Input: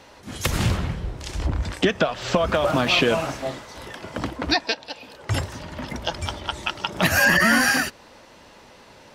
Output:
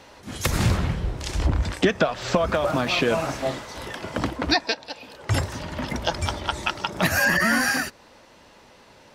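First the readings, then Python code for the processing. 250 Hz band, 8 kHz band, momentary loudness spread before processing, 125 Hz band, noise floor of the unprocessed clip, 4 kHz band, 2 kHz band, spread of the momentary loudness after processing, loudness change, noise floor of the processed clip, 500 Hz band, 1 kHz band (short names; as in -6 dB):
-0.5 dB, -1.5 dB, 17 LU, +1.0 dB, -49 dBFS, -2.5 dB, -2.5 dB, 12 LU, -1.5 dB, -52 dBFS, -0.5 dB, -0.5 dB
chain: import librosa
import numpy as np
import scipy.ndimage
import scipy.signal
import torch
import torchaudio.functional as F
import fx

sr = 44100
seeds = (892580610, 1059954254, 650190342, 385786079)

y = fx.dynamic_eq(x, sr, hz=3000.0, q=4.2, threshold_db=-42.0, ratio=4.0, max_db=-5)
y = fx.rider(y, sr, range_db=3, speed_s=0.5)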